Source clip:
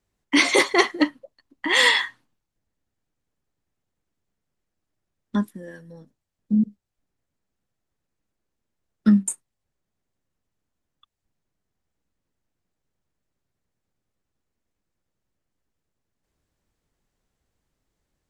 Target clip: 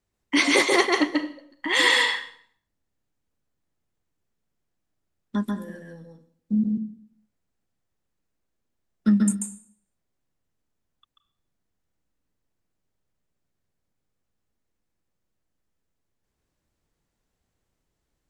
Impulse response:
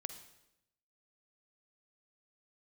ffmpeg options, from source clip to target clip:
-filter_complex "[0:a]asplit=2[a][b];[1:a]atrim=start_sample=2205,asetrate=66150,aresample=44100,adelay=138[c];[b][c]afir=irnorm=-1:irlink=0,volume=4.5dB[d];[a][d]amix=inputs=2:normalize=0,volume=-3dB"

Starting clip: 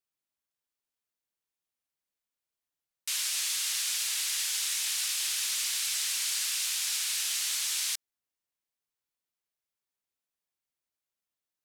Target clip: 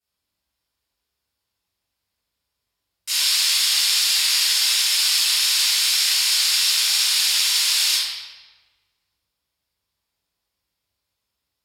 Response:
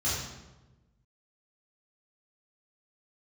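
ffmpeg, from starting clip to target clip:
-filter_complex "[1:a]atrim=start_sample=2205,asetrate=32634,aresample=44100[a];[0:a][a]afir=irnorm=-1:irlink=0,volume=1.5dB"

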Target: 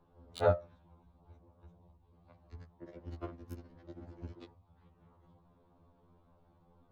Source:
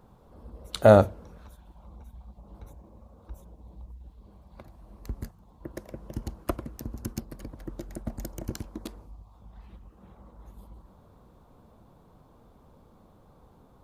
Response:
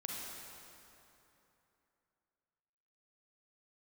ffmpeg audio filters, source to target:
-filter_complex "[0:a]bandreject=f=75.75:t=h:w=4,bandreject=f=151.5:t=h:w=4,bandreject=f=227.25:t=h:w=4,bandreject=f=303:t=h:w=4,bandreject=f=378.75:t=h:w=4,bandreject=f=454.5:t=h:w=4,bandreject=f=530.25:t=h:w=4,bandreject=f=606:t=h:w=4,bandreject=f=681.75:t=h:w=4,bandreject=f=757.5:t=h:w=4,bandreject=f=833.25:t=h:w=4,bandreject=f=909:t=h:w=4,bandreject=f=984.75:t=h:w=4,bandreject=f=1.0605k:t=h:w=4,bandreject=f=1.13625k:t=h:w=4,bandreject=f=1.212k:t=h:w=4,bandreject=f=1.28775k:t=h:w=4,bandreject=f=1.3635k:t=h:w=4,bandreject=f=1.43925k:t=h:w=4,bandreject=f=1.515k:t=h:w=4,bandreject=f=1.59075k:t=h:w=4,bandreject=f=1.6665k:t=h:w=4,bandreject=f=1.74225k:t=h:w=4,bandreject=f=1.818k:t=h:w=4,bandreject=f=1.89375k:t=h:w=4,bandreject=f=1.9695k:t=h:w=4,bandreject=f=2.04525k:t=h:w=4,bandreject=f=2.121k:t=h:w=4,bandreject=f=2.19675k:t=h:w=4,bandreject=f=2.2725k:t=h:w=4,atempo=2,acrossover=split=740|4600[a][b][c];[c]acrusher=bits=4:mix=0:aa=0.5[d];[a][b][d]amix=inputs=3:normalize=0,afftfilt=real='re*2*eq(mod(b,4),0)':imag='im*2*eq(mod(b,4),0)':win_size=2048:overlap=0.75,volume=-6dB"

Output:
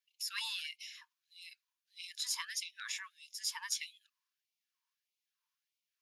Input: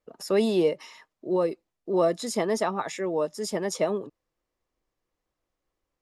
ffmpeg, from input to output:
-af "aeval=exprs='0.251*(cos(1*acos(clip(val(0)/0.251,-1,1)))-cos(1*PI/2))+0.0224*(cos(3*acos(clip(val(0)/0.251,-1,1)))-cos(3*PI/2))+0.00794*(cos(4*acos(clip(val(0)/0.251,-1,1)))-cos(4*PI/2))+0.00562*(cos(5*acos(clip(val(0)/0.251,-1,1)))-cos(5*PI/2))':c=same,equalizer=f=1.25k:t=o:w=0.33:g=-11,equalizer=f=2k:t=o:w=0.33:g=-8,equalizer=f=8k:t=o:w=0.33:g=-8,afftfilt=real='re*gte(b*sr/1024,860*pow(2100/860,0.5+0.5*sin(2*PI*1.6*pts/sr)))':imag='im*gte(b*sr/1024,860*pow(2100/860,0.5+0.5*sin(2*PI*1.6*pts/sr)))':win_size=1024:overlap=0.75,volume=2.5dB"

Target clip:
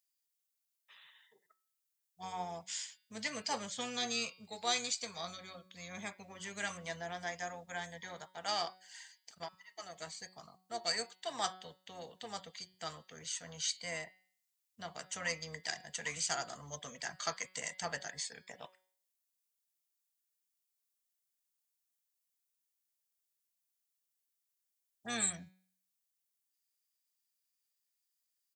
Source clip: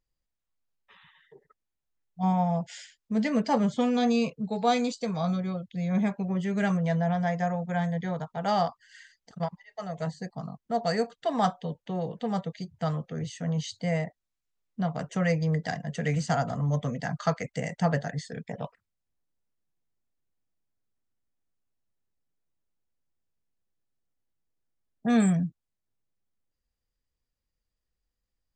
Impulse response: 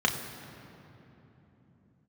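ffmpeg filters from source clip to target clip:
-filter_complex "[0:a]asplit=2[a][b];[b]asetrate=22050,aresample=44100,atempo=2,volume=-10dB[c];[a][c]amix=inputs=2:normalize=0,aderivative,bandreject=f=186:t=h:w=4,bandreject=f=372:t=h:w=4,bandreject=f=558:t=h:w=4,bandreject=f=744:t=h:w=4,bandreject=f=930:t=h:w=4,bandreject=f=1.116k:t=h:w=4,bandreject=f=1.302k:t=h:w=4,bandreject=f=1.488k:t=h:w=4,bandreject=f=1.674k:t=h:w=4,bandreject=f=1.86k:t=h:w=4,bandreject=f=2.046k:t=h:w=4,bandreject=f=2.232k:t=h:w=4,bandreject=f=2.418k:t=h:w=4,bandreject=f=2.604k:t=h:w=4,bandreject=f=2.79k:t=h:w=4,bandreject=f=2.976k:t=h:w=4,bandreject=f=3.162k:t=h:w=4,bandreject=f=3.348k:t=h:w=4,bandreject=f=3.534k:t=h:w=4,bandreject=f=3.72k:t=h:w=4,bandreject=f=3.906k:t=h:w=4,bandreject=f=4.092k:t=h:w=4,bandreject=f=4.278k:t=h:w=4,bandreject=f=4.464k:t=h:w=4,bandreject=f=4.65k:t=h:w=4,bandreject=f=4.836k:t=h:w=4,bandreject=f=5.022k:t=h:w=4,volume=7dB"

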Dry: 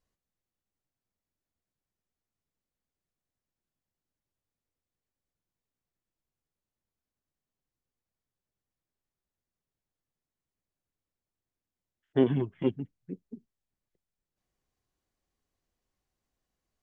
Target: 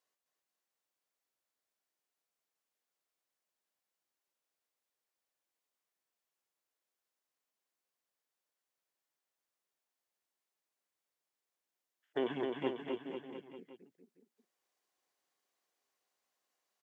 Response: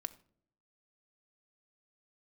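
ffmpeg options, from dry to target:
-af "highpass=530,alimiter=level_in=1.5dB:limit=-24dB:level=0:latency=1:release=35,volume=-1.5dB,aecho=1:1:260|494|704.6|894.1|1065:0.631|0.398|0.251|0.158|0.1,volume=1dB"

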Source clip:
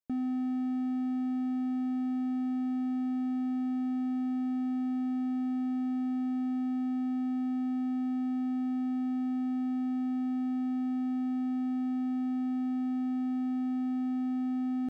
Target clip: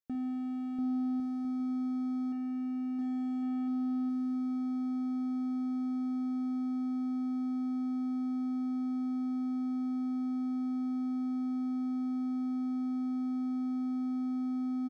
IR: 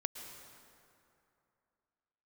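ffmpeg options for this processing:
-filter_complex "[0:a]asettb=1/sr,asplit=3[a][b][c];[a]atrim=end=2.324[d];[b]atrim=start=2.32:end=2.99,asetpts=PTS-STARTPTS,afade=t=in:d=0.004:c=qsin,afade=t=out:st=0.666:d=0.004:c=qsin,lowpass=1.1k[e];[c]atrim=start=2.986[f];[d][e]acrossfade=d=0.004:c1=hsin:c2=qsin[g];[g][f]acrossfade=d=0.004:c1=qsin:c2=hsin,aecho=1:1:690|1104|1352|1501|1591:0.631|0.398|0.251|0.158|0.1,asplit=2[h][i];[1:a]atrim=start_sample=2205,adelay=54[j];[i][j]afir=irnorm=-1:irlink=0,volume=-10.5dB[k];[h][k]amix=inputs=2:normalize=0,volume=-3.5dB"

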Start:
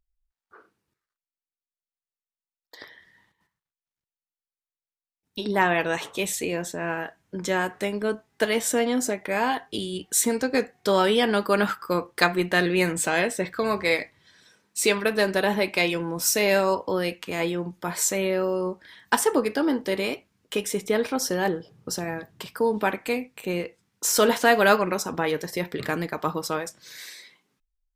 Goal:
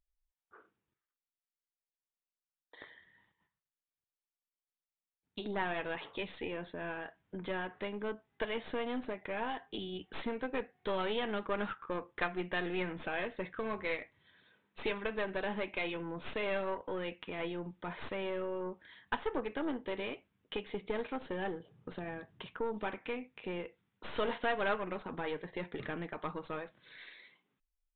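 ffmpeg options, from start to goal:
-af "aeval=exprs='0.75*(cos(1*acos(clip(val(0)/0.75,-1,1)))-cos(1*PI/2))+0.0668*(cos(8*acos(clip(val(0)/0.75,-1,1)))-cos(8*PI/2))':c=same,aresample=8000,aresample=44100,acompressor=threshold=-34dB:ratio=1.5,volume=-7.5dB"

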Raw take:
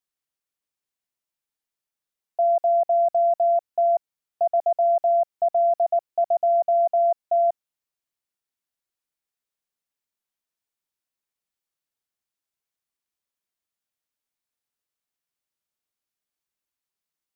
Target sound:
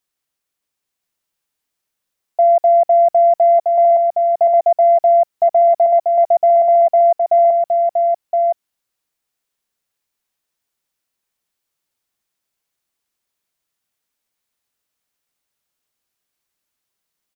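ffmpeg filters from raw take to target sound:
-af "acontrast=22,aecho=1:1:1018:0.631,volume=3.5dB"

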